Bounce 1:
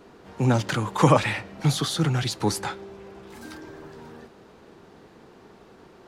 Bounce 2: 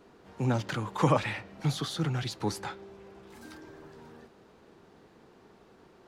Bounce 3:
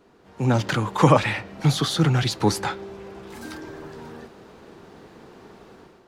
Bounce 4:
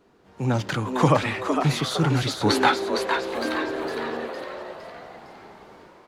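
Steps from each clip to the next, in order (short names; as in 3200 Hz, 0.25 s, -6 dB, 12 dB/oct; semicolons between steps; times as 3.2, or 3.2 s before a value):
dynamic EQ 9400 Hz, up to -5 dB, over -49 dBFS, Q 0.83; gain -7 dB
AGC gain up to 11 dB
spectral gain 2.49–4.44, 220–4500 Hz +12 dB; frequency-shifting echo 0.459 s, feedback 46%, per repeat +130 Hz, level -6 dB; gain -3 dB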